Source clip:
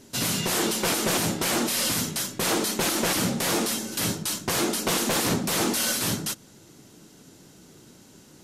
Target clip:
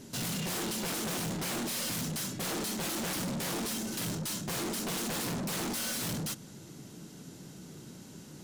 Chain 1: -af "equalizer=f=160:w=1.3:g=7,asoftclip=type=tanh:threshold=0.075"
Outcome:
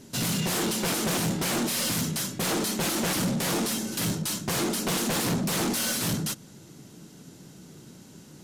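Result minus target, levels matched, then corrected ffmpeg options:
saturation: distortion -7 dB
-af "equalizer=f=160:w=1.3:g=7,asoftclip=type=tanh:threshold=0.0224"

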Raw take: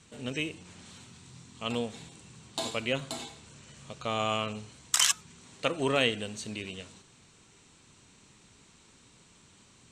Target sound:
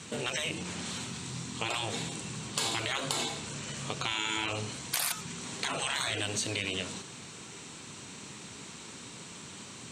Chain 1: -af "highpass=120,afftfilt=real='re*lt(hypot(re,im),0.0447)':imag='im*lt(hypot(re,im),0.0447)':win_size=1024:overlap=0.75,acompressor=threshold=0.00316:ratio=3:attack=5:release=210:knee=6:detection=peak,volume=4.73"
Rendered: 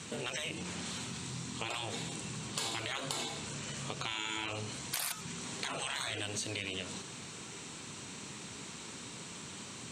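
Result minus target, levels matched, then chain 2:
compression: peak gain reduction +5.5 dB
-af "highpass=120,afftfilt=real='re*lt(hypot(re,im),0.0447)':imag='im*lt(hypot(re,im),0.0447)':win_size=1024:overlap=0.75,acompressor=threshold=0.00794:ratio=3:attack=5:release=210:knee=6:detection=peak,volume=4.73"

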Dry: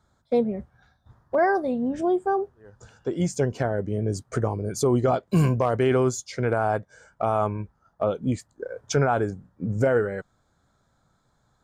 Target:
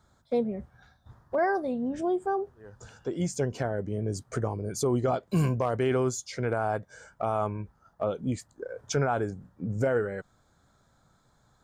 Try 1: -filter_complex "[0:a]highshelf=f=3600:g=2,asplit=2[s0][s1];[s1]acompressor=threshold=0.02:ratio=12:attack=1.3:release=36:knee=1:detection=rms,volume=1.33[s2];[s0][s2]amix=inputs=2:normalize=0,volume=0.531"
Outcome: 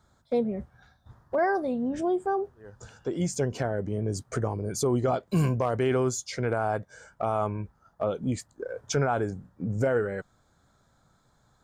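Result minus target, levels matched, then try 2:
compression: peak gain reduction -9 dB
-filter_complex "[0:a]highshelf=f=3600:g=2,asplit=2[s0][s1];[s1]acompressor=threshold=0.00631:ratio=12:attack=1.3:release=36:knee=1:detection=rms,volume=1.33[s2];[s0][s2]amix=inputs=2:normalize=0,volume=0.531"

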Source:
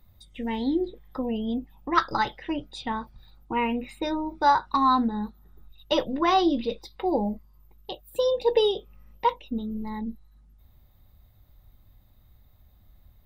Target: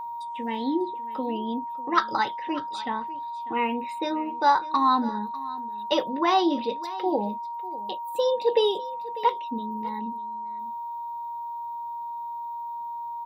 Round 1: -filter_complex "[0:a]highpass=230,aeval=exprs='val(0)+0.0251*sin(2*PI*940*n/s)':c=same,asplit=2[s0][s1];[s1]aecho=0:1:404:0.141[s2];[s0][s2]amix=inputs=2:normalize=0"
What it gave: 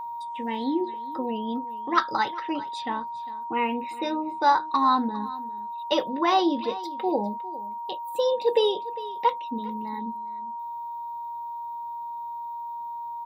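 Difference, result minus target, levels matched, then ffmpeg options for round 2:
echo 193 ms early
-filter_complex "[0:a]highpass=230,aeval=exprs='val(0)+0.0251*sin(2*PI*940*n/s)':c=same,asplit=2[s0][s1];[s1]aecho=0:1:597:0.141[s2];[s0][s2]amix=inputs=2:normalize=0"

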